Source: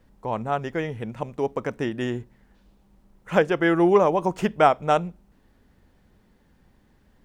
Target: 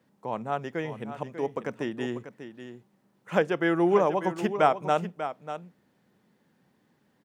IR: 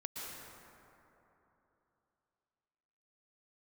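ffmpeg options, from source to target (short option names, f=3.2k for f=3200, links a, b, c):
-filter_complex "[0:a]highpass=f=130:w=0.5412,highpass=f=130:w=1.3066,asplit=2[a][b];[b]aecho=0:1:593:0.282[c];[a][c]amix=inputs=2:normalize=0,volume=-4.5dB"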